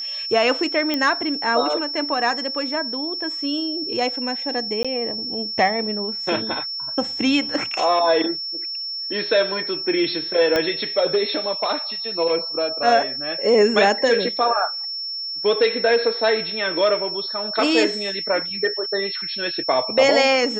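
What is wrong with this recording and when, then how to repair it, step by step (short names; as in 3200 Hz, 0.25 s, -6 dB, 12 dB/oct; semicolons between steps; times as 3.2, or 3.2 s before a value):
tone 5400 Hz -26 dBFS
0.94 pop -8 dBFS
4.83–4.85 gap 16 ms
10.56 pop -7 dBFS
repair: de-click; notch 5400 Hz, Q 30; interpolate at 4.83, 16 ms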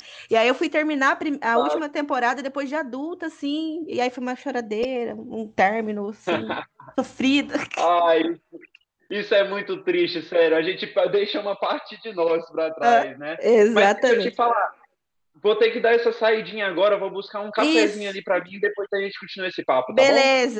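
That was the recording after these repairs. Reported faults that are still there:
10.56 pop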